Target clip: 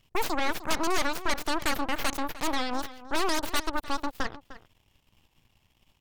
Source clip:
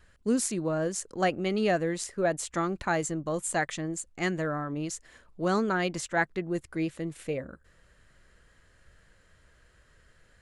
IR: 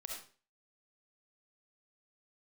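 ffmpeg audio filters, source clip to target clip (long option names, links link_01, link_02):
-filter_complex "[0:a]asplit=2[link_01][link_02];[link_02]acompressor=threshold=-42dB:ratio=6,volume=3dB[link_03];[link_01][link_03]amix=inputs=2:normalize=0,aeval=exprs='0.266*(cos(1*acos(clip(val(0)/0.266,-1,1)))-cos(1*PI/2))+0.0668*(cos(3*acos(clip(val(0)/0.266,-1,1)))-cos(3*PI/2))+0.0841*(cos(8*acos(clip(val(0)/0.266,-1,1)))-cos(8*PI/2))':channel_layout=same,asplit=2[link_04][link_05];[link_05]adelay=524.8,volume=-15dB,highshelf=frequency=4000:gain=-11.8[link_06];[link_04][link_06]amix=inputs=2:normalize=0,asetrate=76440,aresample=44100,volume=-3.5dB"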